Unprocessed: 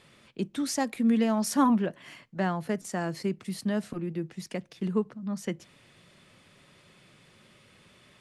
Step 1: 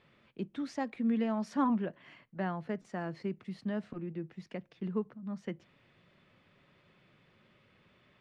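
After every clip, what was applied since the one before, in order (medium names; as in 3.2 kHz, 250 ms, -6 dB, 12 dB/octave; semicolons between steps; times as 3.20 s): low-pass 2.9 kHz 12 dB/octave; trim -6.5 dB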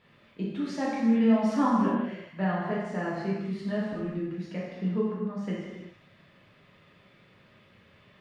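reverberation, pre-delay 3 ms, DRR -6.5 dB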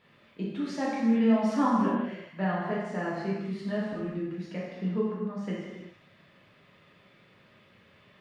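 bass shelf 100 Hz -6.5 dB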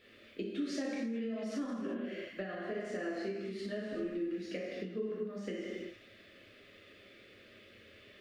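peak limiter -22 dBFS, peak gain reduction 9.5 dB; compression, threshold -36 dBFS, peak gain reduction 10.5 dB; static phaser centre 380 Hz, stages 4; trim +5 dB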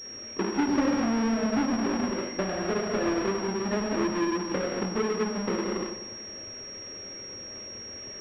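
square wave that keeps the level; feedback echo behind a low-pass 97 ms, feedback 64%, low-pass 1.2 kHz, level -11 dB; class-D stage that switches slowly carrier 5.6 kHz; trim +6.5 dB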